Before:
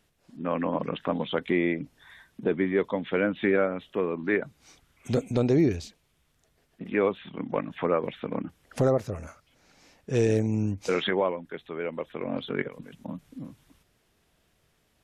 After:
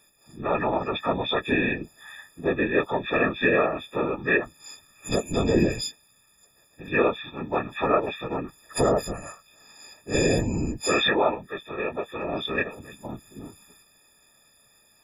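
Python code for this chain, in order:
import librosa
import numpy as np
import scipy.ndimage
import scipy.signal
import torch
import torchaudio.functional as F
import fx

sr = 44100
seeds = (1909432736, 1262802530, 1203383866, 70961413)

y = fx.freq_snap(x, sr, grid_st=6)
y = fx.whisperise(y, sr, seeds[0])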